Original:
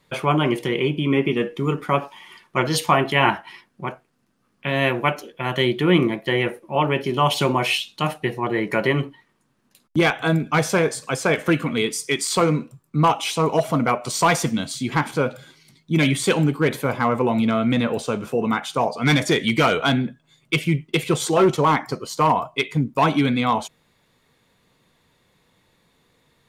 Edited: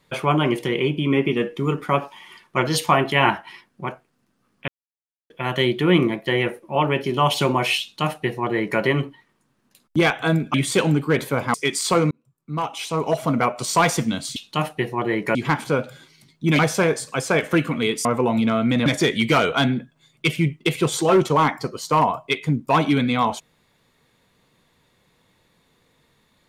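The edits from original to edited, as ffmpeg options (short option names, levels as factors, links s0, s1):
-filter_complex "[0:a]asplit=11[s0][s1][s2][s3][s4][s5][s6][s7][s8][s9][s10];[s0]atrim=end=4.68,asetpts=PTS-STARTPTS,afade=t=out:st=4.676:d=0.004:c=hsin[s11];[s1]atrim=start=4.68:end=5.3,asetpts=PTS-STARTPTS,volume=0[s12];[s2]atrim=start=5.3:end=10.542,asetpts=PTS-STARTPTS,afade=t=in:d=0.004:c=hsin[s13];[s3]atrim=start=16.058:end=17.062[s14];[s4]atrim=start=11.998:end=12.57,asetpts=PTS-STARTPTS,afade=t=out:st=0.568:d=0.004:c=hsin[s15];[s5]atrim=start=12.57:end=14.822,asetpts=PTS-STARTPTS,afade=t=in:d=1.28[s16];[s6]atrim=start=7.808:end=8.802[s17];[s7]atrim=start=14.818:end=16.062[s18];[s8]atrim=start=10.538:end=12.002[s19];[s9]atrim=start=17.058:end=17.872[s20];[s10]atrim=start=19.138[s21];[s11][s12][s13]concat=n=3:v=0:a=1[s22];[s22][s14]acrossfade=d=0.004:c1=hsin:c2=hsin[s23];[s15][s16]concat=n=2:v=0:a=1[s24];[s23][s24]acrossfade=d=0.004:c1=hsin:c2=hsin[s25];[s25][s17]acrossfade=d=0.004:c1=hsin:c2=hsin[s26];[s26][s18]acrossfade=d=0.004:c1=hsin:c2=hsin[s27];[s27][s19]acrossfade=d=0.004:c1=hsin:c2=hsin[s28];[s28][s20]acrossfade=d=0.004:c1=hsin:c2=hsin[s29];[s29][s21]acrossfade=d=0.004:c1=hsin:c2=hsin"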